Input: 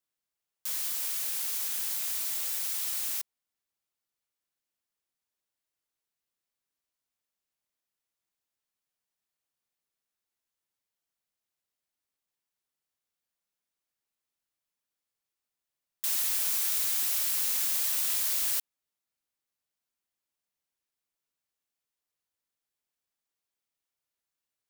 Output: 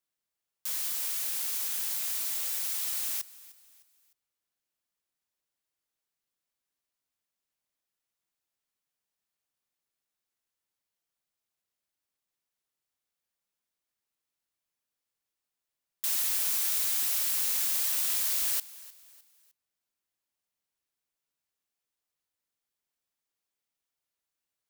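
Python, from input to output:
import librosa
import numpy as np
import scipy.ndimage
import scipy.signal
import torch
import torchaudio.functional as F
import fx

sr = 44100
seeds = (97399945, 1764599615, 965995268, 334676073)

y = fx.echo_feedback(x, sr, ms=305, feedback_pct=39, wet_db=-19.5)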